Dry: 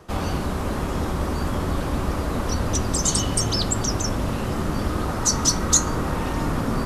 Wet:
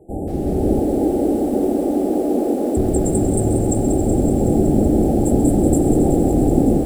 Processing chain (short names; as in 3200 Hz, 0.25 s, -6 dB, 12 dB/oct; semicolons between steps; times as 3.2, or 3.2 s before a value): rattling part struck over -26 dBFS, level -21 dBFS; brick-wall FIR band-stop 860–7300 Hz; AGC gain up to 9.5 dB; bell 340 Hz +10 dB 0.97 oct; 0.79–2.77 steep high-pass 230 Hz 36 dB/oct; high shelf 5400 Hz -7.5 dB; thin delay 0.134 s, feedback 82%, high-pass 2300 Hz, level -14 dB; lo-fi delay 0.187 s, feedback 80%, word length 6-bit, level -8.5 dB; gain -3.5 dB